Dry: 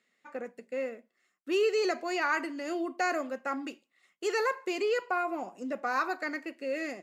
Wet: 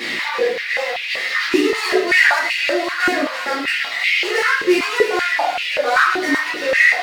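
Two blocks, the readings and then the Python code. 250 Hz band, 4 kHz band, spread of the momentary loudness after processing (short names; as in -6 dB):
+13.0 dB, +20.5 dB, 8 LU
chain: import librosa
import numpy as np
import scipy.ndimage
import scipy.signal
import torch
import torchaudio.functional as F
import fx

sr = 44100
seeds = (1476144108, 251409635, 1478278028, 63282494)

p1 = fx.delta_mod(x, sr, bps=32000, step_db=-38.0)
p2 = fx.add_hum(p1, sr, base_hz=60, snr_db=15)
p3 = fx.dereverb_blind(p2, sr, rt60_s=1.7)
p4 = fx.band_shelf(p3, sr, hz=2800.0, db=9.0, octaves=1.7)
p5 = fx.leveller(p4, sr, passes=2)
p6 = fx.level_steps(p5, sr, step_db=17)
p7 = p5 + (p6 * librosa.db_to_amplitude(-3.0))
p8 = fx.leveller(p7, sr, passes=2)
p9 = fx.vibrato(p8, sr, rate_hz=9.1, depth_cents=13.0)
p10 = p9 + fx.echo_wet_highpass(p9, sr, ms=334, feedback_pct=68, hz=1400.0, wet_db=-8, dry=0)
p11 = fx.room_shoebox(p10, sr, seeds[0], volume_m3=100.0, walls='mixed', distance_m=2.3)
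p12 = fx.filter_held_highpass(p11, sr, hz=5.2, low_hz=290.0, high_hz=2500.0)
y = p12 * librosa.db_to_amplitude(-11.5)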